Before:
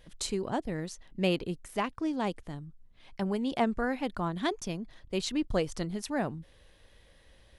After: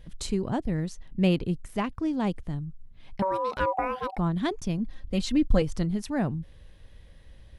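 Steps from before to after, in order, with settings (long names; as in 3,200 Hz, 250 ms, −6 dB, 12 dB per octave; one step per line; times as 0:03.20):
bass and treble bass +11 dB, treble −2 dB
0:03.22–0:04.18: ring modulation 760 Hz
0:04.78–0:05.62: comb filter 3.8 ms, depth 68%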